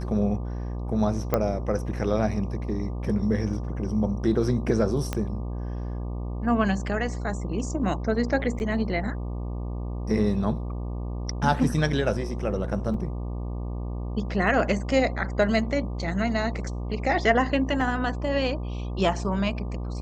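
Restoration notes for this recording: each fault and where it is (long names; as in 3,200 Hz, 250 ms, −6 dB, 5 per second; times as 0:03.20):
mains buzz 60 Hz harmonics 20 −31 dBFS
0:01.34: click −10 dBFS
0:05.13: click −13 dBFS
0:08.59–0:08.60: drop-out 9.8 ms
0:12.94: drop-out 2.8 ms
0:17.81: drop-out 2.7 ms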